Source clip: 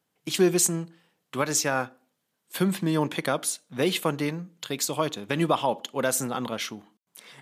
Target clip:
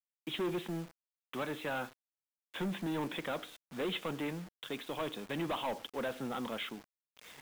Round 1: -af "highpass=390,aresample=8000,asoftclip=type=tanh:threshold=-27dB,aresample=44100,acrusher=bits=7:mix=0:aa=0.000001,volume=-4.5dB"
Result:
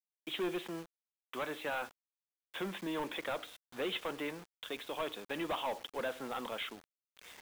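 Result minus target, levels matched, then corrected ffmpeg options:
125 Hz band -8.5 dB
-af "highpass=170,aresample=8000,asoftclip=type=tanh:threshold=-27dB,aresample=44100,acrusher=bits=7:mix=0:aa=0.000001,volume=-4.5dB"

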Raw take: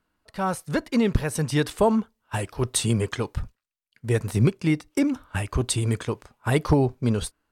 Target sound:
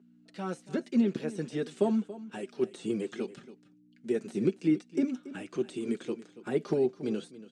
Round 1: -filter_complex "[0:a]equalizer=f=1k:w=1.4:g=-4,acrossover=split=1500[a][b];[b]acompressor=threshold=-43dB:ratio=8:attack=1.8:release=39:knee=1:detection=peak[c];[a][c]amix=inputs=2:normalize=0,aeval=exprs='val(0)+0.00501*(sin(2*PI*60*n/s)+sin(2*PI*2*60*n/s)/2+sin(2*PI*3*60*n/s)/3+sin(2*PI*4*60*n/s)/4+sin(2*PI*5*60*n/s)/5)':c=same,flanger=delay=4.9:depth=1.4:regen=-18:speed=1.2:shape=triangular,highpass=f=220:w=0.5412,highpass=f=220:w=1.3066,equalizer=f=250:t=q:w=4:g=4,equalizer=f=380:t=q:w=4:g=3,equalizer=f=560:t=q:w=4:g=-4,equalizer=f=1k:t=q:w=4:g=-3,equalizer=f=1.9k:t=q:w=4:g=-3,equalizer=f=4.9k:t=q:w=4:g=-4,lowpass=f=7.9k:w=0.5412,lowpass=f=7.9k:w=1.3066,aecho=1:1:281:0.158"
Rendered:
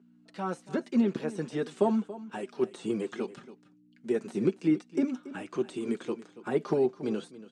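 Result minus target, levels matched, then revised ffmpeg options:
1000 Hz band +5.0 dB
-filter_complex "[0:a]equalizer=f=1k:w=1.4:g=-12.5,acrossover=split=1500[a][b];[b]acompressor=threshold=-43dB:ratio=8:attack=1.8:release=39:knee=1:detection=peak[c];[a][c]amix=inputs=2:normalize=0,aeval=exprs='val(0)+0.00501*(sin(2*PI*60*n/s)+sin(2*PI*2*60*n/s)/2+sin(2*PI*3*60*n/s)/3+sin(2*PI*4*60*n/s)/4+sin(2*PI*5*60*n/s)/5)':c=same,flanger=delay=4.9:depth=1.4:regen=-18:speed=1.2:shape=triangular,highpass=f=220:w=0.5412,highpass=f=220:w=1.3066,equalizer=f=250:t=q:w=4:g=4,equalizer=f=380:t=q:w=4:g=3,equalizer=f=560:t=q:w=4:g=-4,equalizer=f=1k:t=q:w=4:g=-3,equalizer=f=1.9k:t=q:w=4:g=-3,equalizer=f=4.9k:t=q:w=4:g=-4,lowpass=f=7.9k:w=0.5412,lowpass=f=7.9k:w=1.3066,aecho=1:1:281:0.158"

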